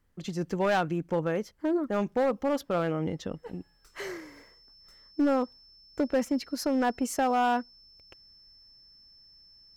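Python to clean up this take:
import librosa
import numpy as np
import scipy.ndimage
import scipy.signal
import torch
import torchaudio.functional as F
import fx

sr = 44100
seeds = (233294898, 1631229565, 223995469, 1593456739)

y = fx.fix_declip(x, sr, threshold_db=-20.0)
y = fx.notch(y, sr, hz=5300.0, q=30.0)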